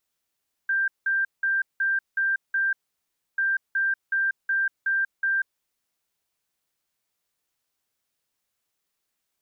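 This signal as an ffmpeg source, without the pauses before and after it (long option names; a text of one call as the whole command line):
ffmpeg -f lavfi -i "aevalsrc='0.0944*sin(2*PI*1580*t)*clip(min(mod(mod(t,2.69),0.37),0.19-mod(mod(t,2.69),0.37))/0.005,0,1)*lt(mod(t,2.69),2.22)':duration=5.38:sample_rate=44100" out.wav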